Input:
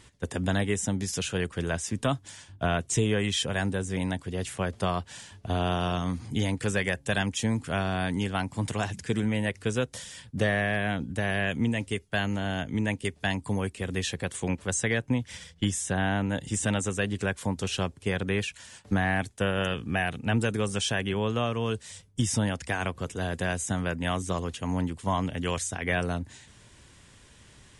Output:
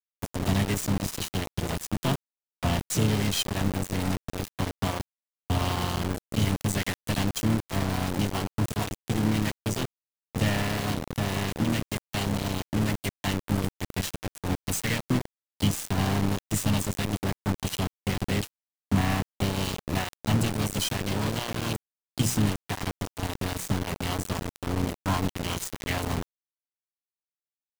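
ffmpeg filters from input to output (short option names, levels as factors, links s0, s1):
-filter_complex "[0:a]agate=range=0.0224:threshold=0.00631:ratio=16:detection=peak,equalizer=f=1400:w=1.6:g=-11.5,bandreject=f=60:t=h:w=6,bandreject=f=120:t=h:w=6,bandreject=f=180:t=h:w=6,bandreject=f=240:t=h:w=6,bandreject=f=300:t=h:w=6,bandreject=f=360:t=h:w=6,bandreject=f=420:t=h:w=6,bandreject=f=480:t=h:w=6,bandreject=f=540:t=h:w=6,aecho=1:1:1:0.64,acrossover=split=160|5400[s0][s1][s2];[s2]acompressor=mode=upward:threshold=0.00251:ratio=2.5[s3];[s0][s1][s3]amix=inputs=3:normalize=0,asplit=4[s4][s5][s6][s7];[s5]asetrate=35002,aresample=44100,atempo=1.25992,volume=0.251[s8];[s6]asetrate=58866,aresample=44100,atempo=0.749154,volume=0.355[s9];[s7]asetrate=66075,aresample=44100,atempo=0.66742,volume=0.224[s10];[s4][s8][s9][s10]amix=inputs=4:normalize=0,aeval=exprs='0.299*(cos(1*acos(clip(val(0)/0.299,-1,1)))-cos(1*PI/2))+0.0266*(cos(2*acos(clip(val(0)/0.299,-1,1)))-cos(2*PI/2))+0.0237*(cos(4*acos(clip(val(0)/0.299,-1,1)))-cos(4*PI/2))':c=same,aeval=exprs='val(0)*gte(abs(val(0)),0.0531)':c=same"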